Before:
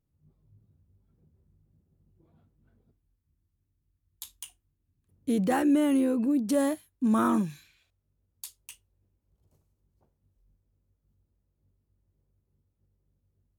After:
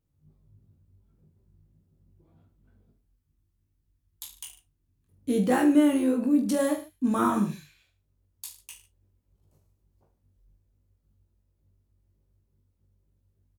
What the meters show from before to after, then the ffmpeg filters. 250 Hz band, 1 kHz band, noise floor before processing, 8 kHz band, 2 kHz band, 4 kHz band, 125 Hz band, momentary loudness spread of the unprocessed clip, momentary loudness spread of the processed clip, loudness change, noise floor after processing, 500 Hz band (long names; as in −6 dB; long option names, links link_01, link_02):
+1.5 dB, +2.0 dB, −79 dBFS, +2.0 dB, +2.5 dB, +2.5 dB, +1.5 dB, 22 LU, 22 LU, +2.0 dB, −74 dBFS, +2.0 dB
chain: -af "aecho=1:1:20|44|72.8|107.4|148.8:0.631|0.398|0.251|0.158|0.1"